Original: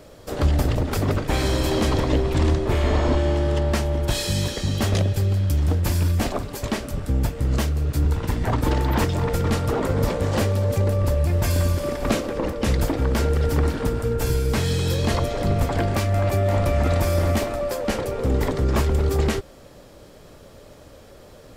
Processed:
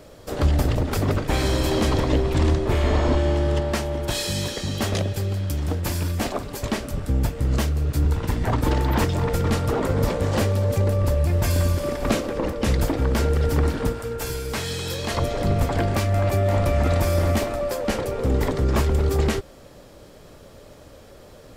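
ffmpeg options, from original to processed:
ffmpeg -i in.wav -filter_complex "[0:a]asettb=1/sr,asplit=3[link_01][link_02][link_03];[link_01]atrim=end=3.604[link_04];[link_02]atrim=start=3.6:end=6.46,asetpts=PTS-STARTPTS,afade=type=in:duration=0.004:curve=qsin,afade=type=out:start_time=2.856:duration=0.004:curve=qsin,lowshelf=frequency=130:gain=-7.5[link_05];[link_03]atrim=start=6.456[link_06];[link_04][link_05]acrossfade=duration=0.004:curve1=hsin:curve2=qsin[link_07];[link_07][link_06]acrossfade=duration=0.004:curve1=qsin:curve2=hsin,asettb=1/sr,asplit=3[link_08][link_09][link_10];[link_08]atrim=end=13.924[link_11];[link_09]atrim=start=13.92:end=15.17,asetpts=PTS-STARTPTS,afade=type=in:duration=0.004:curve=qsin,afade=type=out:start_time=1.246:duration=0.004:curve=qsin,lowshelf=frequency=410:gain=-10[link_12];[link_10]atrim=start=15.166[link_13];[link_11][link_12]acrossfade=duration=0.004:curve1=hsin:curve2=qsin[link_14];[link_14][link_13]acrossfade=duration=0.004:curve1=qsin:curve2=hsin" out.wav

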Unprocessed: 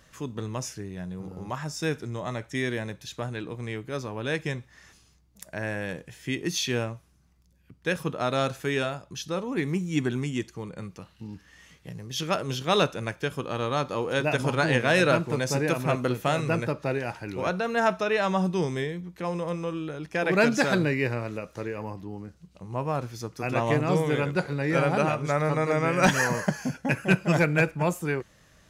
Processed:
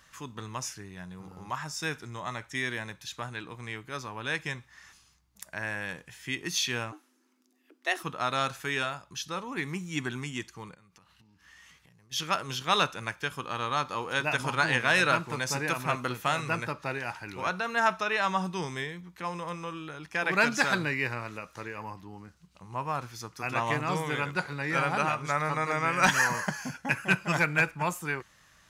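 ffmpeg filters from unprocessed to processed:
ffmpeg -i in.wav -filter_complex "[0:a]asplit=3[link_01][link_02][link_03];[link_01]afade=type=out:start_time=6.91:duration=0.02[link_04];[link_02]afreqshift=190,afade=type=in:start_time=6.91:duration=0.02,afade=type=out:start_time=8.02:duration=0.02[link_05];[link_03]afade=type=in:start_time=8.02:duration=0.02[link_06];[link_04][link_05][link_06]amix=inputs=3:normalize=0,asplit=3[link_07][link_08][link_09];[link_07]afade=type=out:start_time=10.74:duration=0.02[link_10];[link_08]acompressor=threshold=-50dB:ratio=16:attack=3.2:release=140:knee=1:detection=peak,afade=type=in:start_time=10.74:duration=0.02,afade=type=out:start_time=12.11:duration=0.02[link_11];[link_09]afade=type=in:start_time=12.11:duration=0.02[link_12];[link_10][link_11][link_12]amix=inputs=3:normalize=0,lowshelf=frequency=740:width_type=q:width=1.5:gain=-7.5" out.wav

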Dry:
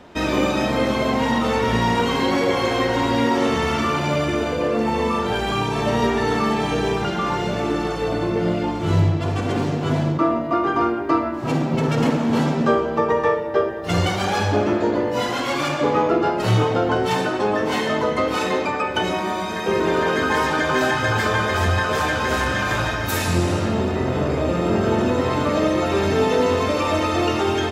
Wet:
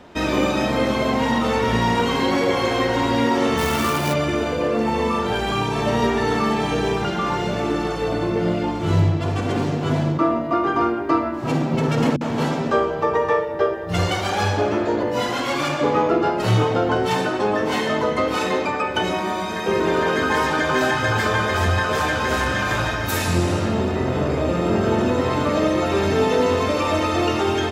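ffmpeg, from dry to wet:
ffmpeg -i in.wav -filter_complex "[0:a]asplit=3[link_01][link_02][link_03];[link_01]afade=type=out:start_time=3.57:duration=0.02[link_04];[link_02]acrusher=bits=2:mode=log:mix=0:aa=0.000001,afade=type=in:start_time=3.57:duration=0.02,afade=type=out:start_time=4.12:duration=0.02[link_05];[link_03]afade=type=in:start_time=4.12:duration=0.02[link_06];[link_04][link_05][link_06]amix=inputs=3:normalize=0,asettb=1/sr,asplit=3[link_07][link_08][link_09];[link_07]atrim=end=12.164[link_10];[link_08]atrim=start=12.16:end=15.03,asetpts=PTS-STARTPTS,afade=type=in:duration=0.004:curve=qsin,afade=type=out:start_time=2.866:duration=0.004:curve=qsin,acrossover=split=220[link_11][link_12];[link_12]adelay=50[link_13];[link_11][link_13]amix=inputs=2:normalize=0,atrim=end_sample=126567[link_14];[link_09]atrim=start=15.026[link_15];[link_10][link_14]acrossfade=duration=0.004:curve1=hsin:curve2=qsin[link_16];[link_16][link_15]acrossfade=duration=0.004:curve1=qsin:curve2=hsin" out.wav

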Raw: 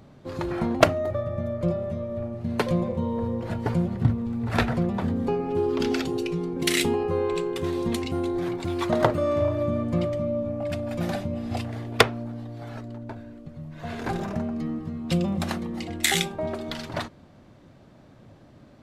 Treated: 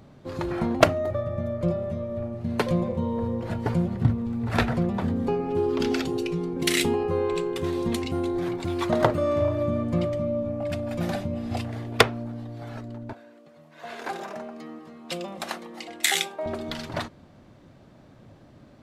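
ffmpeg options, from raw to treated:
ffmpeg -i in.wav -filter_complex "[0:a]asettb=1/sr,asplit=3[link_01][link_02][link_03];[link_01]atrim=end=13.134[link_04];[link_02]atrim=start=13.13:end=16.46,asetpts=PTS-STARTPTS,afade=type=in:duration=0.004:curve=qsin,afade=type=out:start_time=3.326:duration=0.004:curve=qsin,highpass=470[link_05];[link_03]atrim=start=16.456[link_06];[link_04][link_05]acrossfade=duration=0.004:curve1=hsin:curve2=qsin[link_07];[link_07][link_06]acrossfade=duration=0.004:curve1=qsin:curve2=hsin" out.wav

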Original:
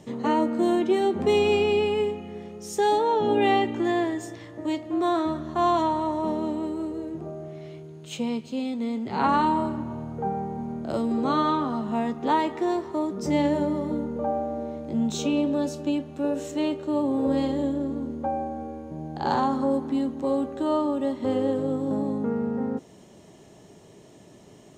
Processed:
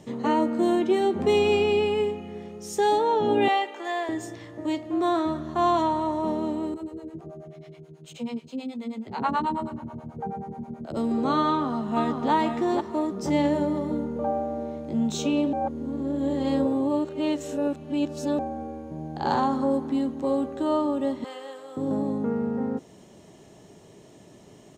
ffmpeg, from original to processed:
ffmpeg -i in.wav -filter_complex "[0:a]asettb=1/sr,asplit=3[link_01][link_02][link_03];[link_01]atrim=end=3.484[link_04];[link_02]atrim=start=3.48:end=4.09,asetpts=PTS-STARTPTS,afade=type=in:duration=0.004:curve=qsin,afade=type=out:start_time=0.606:duration=0.004:curve=qsin,highpass=frequency=500:width=0.5412,highpass=frequency=500:width=1.3066[link_05];[link_03]atrim=start=4.086[link_06];[link_04][link_05]acrossfade=duration=0.004:curve1=hsin:curve2=qsin[link_07];[link_07][link_06]acrossfade=duration=0.004:curve1=qsin:curve2=hsin,asettb=1/sr,asplit=3[link_08][link_09][link_10];[link_08]atrim=end=6.744[link_11];[link_09]atrim=start=6.74:end=10.97,asetpts=PTS-STARTPTS,afade=type=in:duration=0.004:curve=qsin,afade=type=out:start_time=4.226:duration=0.004:curve=qsin,acrossover=split=470[link_12][link_13];[link_12]aeval=exprs='val(0)*(1-1/2+1/2*cos(2*PI*9.3*n/s))':channel_layout=same[link_14];[link_13]aeval=exprs='val(0)*(1-1/2-1/2*cos(2*PI*9.3*n/s))':channel_layout=same[link_15];[link_14][link_15]amix=inputs=2:normalize=0[link_16];[link_10]atrim=start=10.966[link_17];[link_11][link_16]acrossfade=duration=0.004:curve1=hsin:curve2=qsin[link_18];[link_18][link_17]acrossfade=duration=0.004:curve1=qsin:curve2=hsin,asplit=2[link_19][link_20];[link_20]afade=type=in:start_time=11.47:duration=0.01,afade=type=out:start_time=12.31:duration=0.01,aecho=0:1:490|980|1470|1960:0.562341|0.196819|0.0688868|0.0241104[link_21];[link_19][link_21]amix=inputs=2:normalize=0,asettb=1/sr,asplit=3[link_22][link_23][link_24];[link_22]atrim=end=21.244[link_25];[link_23]atrim=start=21.24:end=21.77,asetpts=PTS-STARTPTS,afade=type=in:duration=0.004:curve=qsin,afade=type=out:start_time=0.526:duration=0.004:curve=qsin,highpass=1100[link_26];[link_24]atrim=start=21.766[link_27];[link_25][link_26]acrossfade=duration=0.004:curve1=hsin:curve2=qsin[link_28];[link_28][link_27]acrossfade=duration=0.004:curve1=qsin:curve2=hsin,asplit=3[link_29][link_30][link_31];[link_29]atrim=end=15.532[link_32];[link_30]atrim=start=15.528:end=18.392,asetpts=PTS-STARTPTS,areverse[link_33];[link_31]atrim=start=18.388[link_34];[link_32][link_33]acrossfade=duration=0.004:curve1=hsin:curve2=hsin[link_35];[link_35][link_34]acrossfade=duration=0.004:curve1=hsin:curve2=hsin" out.wav

